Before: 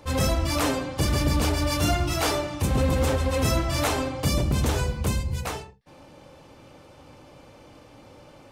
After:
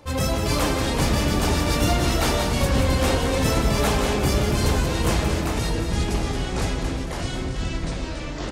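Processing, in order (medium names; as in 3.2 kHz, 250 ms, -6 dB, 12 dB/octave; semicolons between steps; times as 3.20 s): feedback delay 179 ms, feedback 44%, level -7 dB; ever faster or slower copies 235 ms, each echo -4 st, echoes 3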